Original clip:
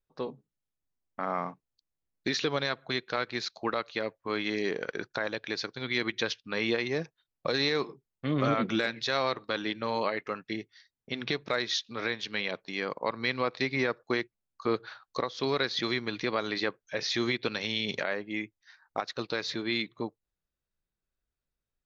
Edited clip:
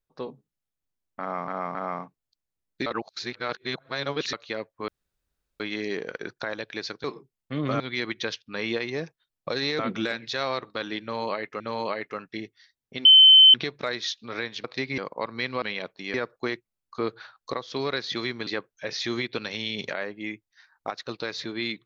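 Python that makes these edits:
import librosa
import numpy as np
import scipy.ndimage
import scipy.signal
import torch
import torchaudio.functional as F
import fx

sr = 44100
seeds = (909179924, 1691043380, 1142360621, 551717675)

y = fx.edit(x, sr, fx.repeat(start_s=1.21, length_s=0.27, count=3),
    fx.reverse_span(start_s=2.32, length_s=1.47),
    fx.insert_room_tone(at_s=4.34, length_s=0.72),
    fx.move(start_s=7.77, length_s=0.76, to_s=5.78),
    fx.repeat(start_s=9.76, length_s=0.58, count=2),
    fx.insert_tone(at_s=11.21, length_s=0.49, hz=3070.0, db=-9.0),
    fx.swap(start_s=12.31, length_s=0.52, other_s=13.47, other_length_s=0.34),
    fx.cut(start_s=16.14, length_s=0.43), tone=tone)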